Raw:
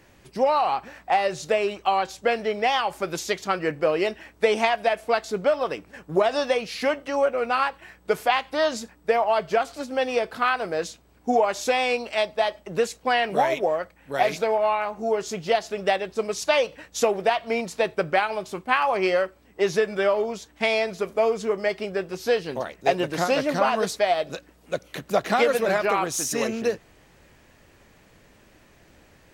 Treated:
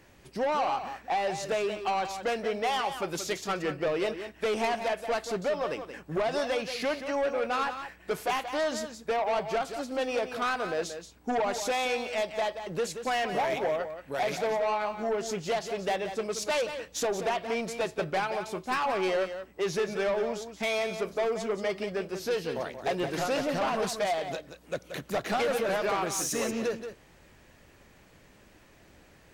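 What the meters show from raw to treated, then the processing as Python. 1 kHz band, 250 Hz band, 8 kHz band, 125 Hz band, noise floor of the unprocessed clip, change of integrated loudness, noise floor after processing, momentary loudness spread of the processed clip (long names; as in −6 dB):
−6.5 dB, −4.5 dB, −3.0 dB, −3.5 dB, −56 dBFS, −6.0 dB, −57 dBFS, 5 LU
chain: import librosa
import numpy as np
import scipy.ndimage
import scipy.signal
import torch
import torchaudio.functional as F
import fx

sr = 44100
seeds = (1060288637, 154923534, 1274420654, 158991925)

p1 = 10.0 ** (-21.5 / 20.0) * np.tanh(x / 10.0 ** (-21.5 / 20.0))
p2 = p1 + fx.echo_single(p1, sr, ms=179, db=-9.5, dry=0)
y = p2 * 10.0 ** (-2.5 / 20.0)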